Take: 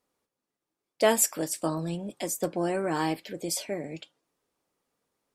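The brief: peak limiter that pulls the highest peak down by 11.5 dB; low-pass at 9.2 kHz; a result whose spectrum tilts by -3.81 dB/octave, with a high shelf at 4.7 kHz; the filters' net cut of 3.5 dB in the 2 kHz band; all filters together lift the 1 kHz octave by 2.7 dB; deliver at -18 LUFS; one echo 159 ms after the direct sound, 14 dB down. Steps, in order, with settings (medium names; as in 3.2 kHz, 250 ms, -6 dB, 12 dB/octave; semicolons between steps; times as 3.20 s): low-pass 9.2 kHz; peaking EQ 1 kHz +4.5 dB; peaking EQ 2 kHz -7 dB; treble shelf 4.7 kHz +6.5 dB; peak limiter -18.5 dBFS; delay 159 ms -14 dB; trim +12.5 dB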